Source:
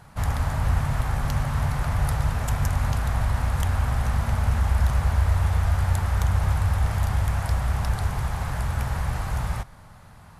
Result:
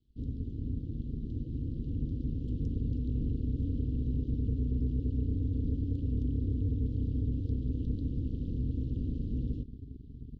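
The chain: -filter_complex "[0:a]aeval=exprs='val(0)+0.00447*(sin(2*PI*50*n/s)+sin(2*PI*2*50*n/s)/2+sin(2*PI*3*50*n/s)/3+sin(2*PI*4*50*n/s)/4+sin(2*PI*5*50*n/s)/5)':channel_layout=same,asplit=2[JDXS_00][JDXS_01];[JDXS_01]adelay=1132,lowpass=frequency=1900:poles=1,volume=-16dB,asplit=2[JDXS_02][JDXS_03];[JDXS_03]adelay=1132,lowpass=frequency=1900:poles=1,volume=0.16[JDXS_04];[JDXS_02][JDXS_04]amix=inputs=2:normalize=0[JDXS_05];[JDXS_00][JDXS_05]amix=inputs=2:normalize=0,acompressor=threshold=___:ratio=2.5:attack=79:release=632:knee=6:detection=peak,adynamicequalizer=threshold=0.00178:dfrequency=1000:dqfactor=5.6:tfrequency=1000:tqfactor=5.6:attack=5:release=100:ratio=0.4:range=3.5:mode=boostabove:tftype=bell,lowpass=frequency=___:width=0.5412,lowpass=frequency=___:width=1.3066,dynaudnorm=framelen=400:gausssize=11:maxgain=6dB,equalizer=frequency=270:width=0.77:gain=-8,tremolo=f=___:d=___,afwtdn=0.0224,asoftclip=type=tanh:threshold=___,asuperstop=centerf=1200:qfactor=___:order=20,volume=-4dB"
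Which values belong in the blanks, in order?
-23dB, 4400, 4400, 190, 1, -18.5dB, 0.5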